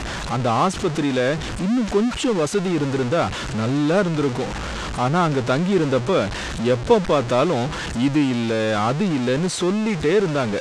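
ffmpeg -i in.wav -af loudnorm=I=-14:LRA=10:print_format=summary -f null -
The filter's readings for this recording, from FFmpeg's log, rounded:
Input Integrated:    -20.8 LUFS
Input True Peak:      -2.7 dBTP
Input LRA:             1.4 LU
Input Threshold:     -30.8 LUFS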